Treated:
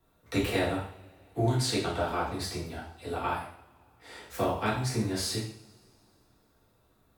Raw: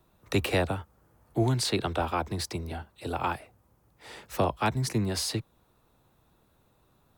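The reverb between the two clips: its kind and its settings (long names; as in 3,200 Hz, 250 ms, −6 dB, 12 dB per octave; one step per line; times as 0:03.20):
coupled-rooms reverb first 0.55 s, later 2.7 s, from −26 dB, DRR −7 dB
level −8.5 dB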